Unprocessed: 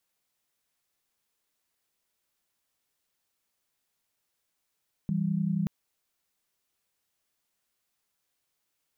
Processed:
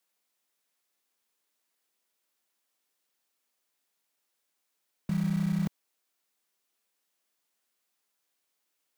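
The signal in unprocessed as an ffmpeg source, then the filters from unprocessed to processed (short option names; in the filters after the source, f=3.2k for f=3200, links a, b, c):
-f lavfi -i "aevalsrc='0.0398*(sin(2*PI*164.81*t)+sin(2*PI*196*t))':d=0.58:s=44100"
-filter_complex "[0:a]acrossover=split=170|500[a][b][c];[a]acrusher=bits=6:mix=0:aa=0.000001[d];[d][b][c]amix=inputs=3:normalize=0"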